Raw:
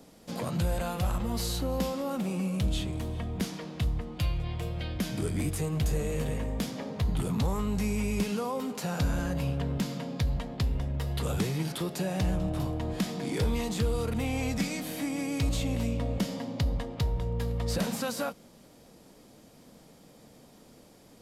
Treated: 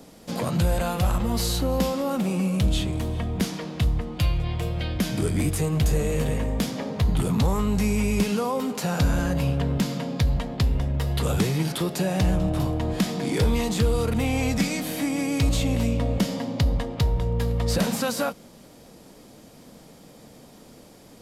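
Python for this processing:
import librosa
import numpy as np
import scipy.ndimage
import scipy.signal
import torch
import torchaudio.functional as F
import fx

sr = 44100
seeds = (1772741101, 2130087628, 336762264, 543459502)

y = x * librosa.db_to_amplitude(6.5)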